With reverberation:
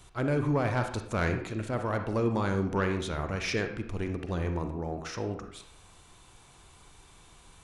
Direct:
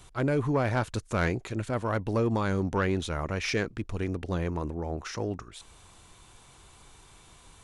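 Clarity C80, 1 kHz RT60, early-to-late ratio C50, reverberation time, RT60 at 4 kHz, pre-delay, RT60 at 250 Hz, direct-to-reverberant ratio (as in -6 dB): 11.0 dB, 0.65 s, 7.5 dB, 0.65 s, 0.50 s, 38 ms, 0.60 s, 5.5 dB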